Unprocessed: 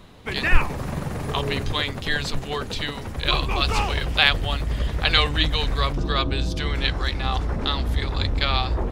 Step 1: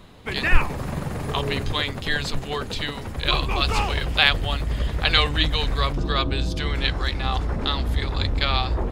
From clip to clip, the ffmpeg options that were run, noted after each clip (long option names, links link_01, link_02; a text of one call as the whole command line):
ffmpeg -i in.wav -af "bandreject=frequency=5800:width=20" out.wav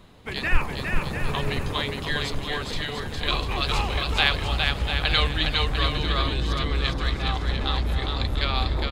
ffmpeg -i in.wav -af "aecho=1:1:410|697|897.9|1039|1137:0.631|0.398|0.251|0.158|0.1,volume=-4dB" out.wav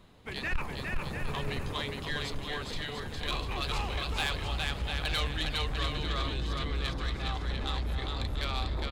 ffmpeg -i in.wav -af "asoftclip=type=tanh:threshold=-17dB,volume=-6.5dB" out.wav